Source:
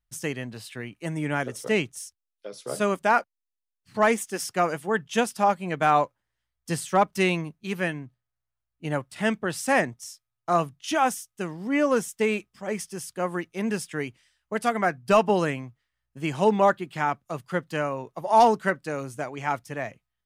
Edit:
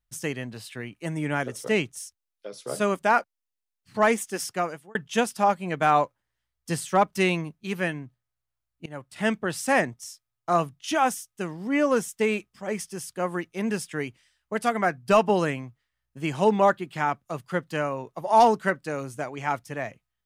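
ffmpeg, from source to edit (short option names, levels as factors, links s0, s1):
-filter_complex "[0:a]asplit=3[s0][s1][s2];[s0]atrim=end=4.95,asetpts=PTS-STARTPTS,afade=t=out:st=4.44:d=0.51[s3];[s1]atrim=start=4.95:end=8.86,asetpts=PTS-STARTPTS,afade=t=in:d=0.004:c=hsin,afade=t=out:st=3.906:d=0.004:c=hsin:silence=0.0749894[s4];[s2]atrim=start=8.86,asetpts=PTS-STARTPTS,afade=t=in:d=0.39:silence=0.0749894[s5];[s3][s4][s5]concat=n=3:v=0:a=1"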